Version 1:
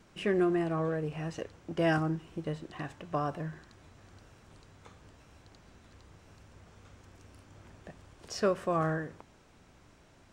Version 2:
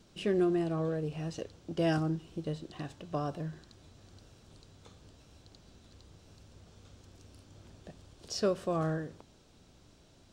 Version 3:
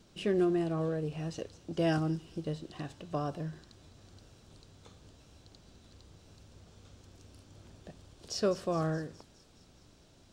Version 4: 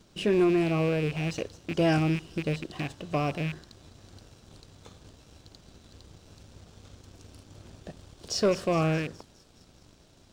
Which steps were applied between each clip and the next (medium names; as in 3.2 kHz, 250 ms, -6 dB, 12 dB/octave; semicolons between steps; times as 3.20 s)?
graphic EQ 1/2/4 kHz -5/-8/+6 dB
feedback echo behind a high-pass 208 ms, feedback 65%, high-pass 4.8 kHz, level -11 dB
rattle on loud lows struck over -41 dBFS, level -33 dBFS; waveshaping leveller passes 1; trim +3 dB